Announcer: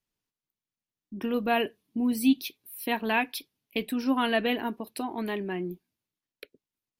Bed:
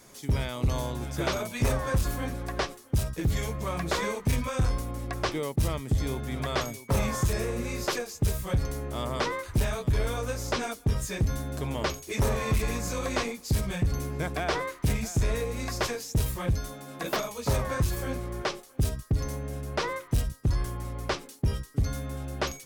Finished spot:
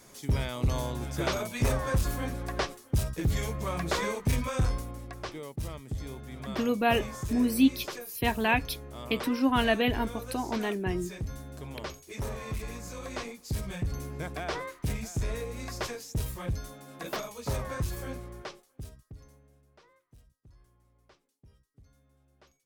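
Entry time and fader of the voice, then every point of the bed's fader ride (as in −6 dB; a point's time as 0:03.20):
5.35 s, +0.5 dB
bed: 0:04.63 −1 dB
0:05.17 −9.5 dB
0:12.91 −9.5 dB
0:13.72 −5.5 dB
0:18.09 −5.5 dB
0:19.83 −31.5 dB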